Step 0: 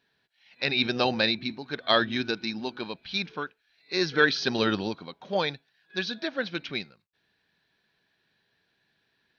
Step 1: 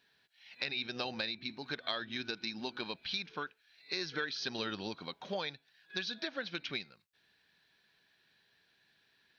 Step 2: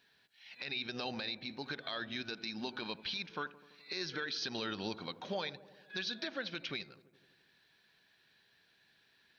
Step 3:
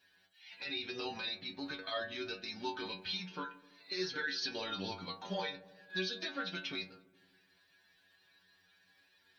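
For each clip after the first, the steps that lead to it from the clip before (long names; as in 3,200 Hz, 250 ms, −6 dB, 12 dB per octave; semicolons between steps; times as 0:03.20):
tilt shelving filter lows −3.5 dB, about 1,200 Hz; downward compressor 6 to 1, threshold −35 dBFS, peak gain reduction 18.5 dB
brickwall limiter −29.5 dBFS, peak gain reduction 10.5 dB; delay with a low-pass on its return 84 ms, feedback 70%, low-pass 870 Hz, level −15.5 dB; level +1.5 dB
spectral magnitudes quantised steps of 15 dB; stiff-string resonator 92 Hz, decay 0.36 s, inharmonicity 0.002; level +11 dB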